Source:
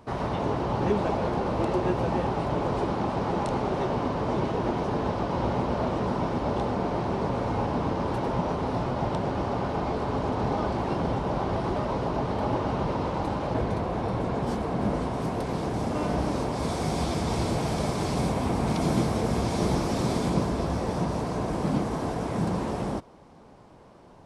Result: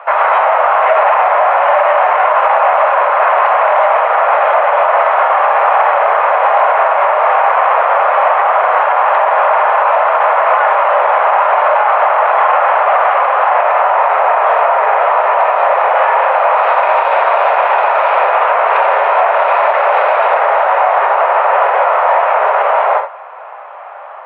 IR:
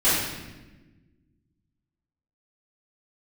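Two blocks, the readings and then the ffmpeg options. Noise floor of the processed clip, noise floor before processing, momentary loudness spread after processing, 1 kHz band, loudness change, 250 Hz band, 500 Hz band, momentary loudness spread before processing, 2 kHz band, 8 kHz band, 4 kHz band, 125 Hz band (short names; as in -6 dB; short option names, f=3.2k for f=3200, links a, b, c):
-29 dBFS, -50 dBFS, 1 LU, +22.5 dB, +17.5 dB, under -20 dB, +16.5 dB, 3 LU, +24.5 dB, under -25 dB, n/a, under -40 dB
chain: -filter_complex "[0:a]asoftclip=type=hard:threshold=-25dB,asplit=2[a][b];[1:a]atrim=start_sample=2205,atrim=end_sample=3969[c];[b][c]afir=irnorm=-1:irlink=0,volume=-19.5dB[d];[a][d]amix=inputs=2:normalize=0,highpass=f=370:t=q:w=0.5412,highpass=f=370:t=q:w=1.307,lowpass=f=2.4k:t=q:w=0.5176,lowpass=f=2.4k:t=q:w=0.7071,lowpass=f=2.4k:t=q:w=1.932,afreqshift=230,alimiter=level_in=23dB:limit=-1dB:release=50:level=0:latency=1,volume=-1dB"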